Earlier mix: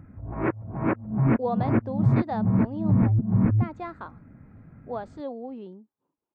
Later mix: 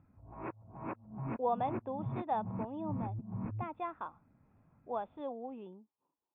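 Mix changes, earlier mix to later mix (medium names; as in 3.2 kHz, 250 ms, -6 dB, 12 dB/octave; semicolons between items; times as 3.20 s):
background -10.0 dB; master: add rippled Chebyshev low-pass 3.6 kHz, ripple 9 dB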